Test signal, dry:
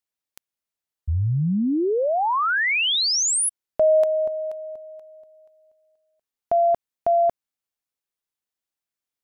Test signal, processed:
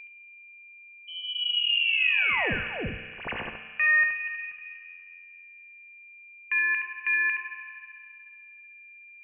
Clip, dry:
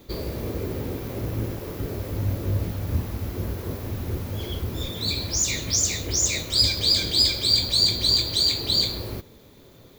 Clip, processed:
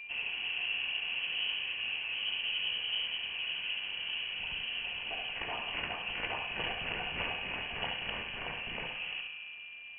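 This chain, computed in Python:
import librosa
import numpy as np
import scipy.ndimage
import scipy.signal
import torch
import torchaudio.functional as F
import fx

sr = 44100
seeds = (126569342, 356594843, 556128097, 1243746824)

y = fx.self_delay(x, sr, depth_ms=0.27)
y = scipy.signal.sosfilt(scipy.signal.butter(2, 190.0, 'highpass', fs=sr, output='sos'), y)
y = y + 10.0 ** (-37.0 / 20.0) * np.sin(2.0 * np.pi * 710.0 * np.arange(len(y)) / sr)
y = fx.notch(y, sr, hz=1800.0, q=13.0)
y = y + 10.0 ** (-5.5 / 20.0) * np.pad(y, (int(71 * sr / 1000.0), 0))[:len(y)]
y = fx.rev_fdn(y, sr, rt60_s=2.5, lf_ratio=1.3, hf_ratio=0.45, size_ms=11.0, drr_db=4.5)
y = fx.freq_invert(y, sr, carrier_hz=3100)
y = y * 10.0 ** (-5.0 / 20.0)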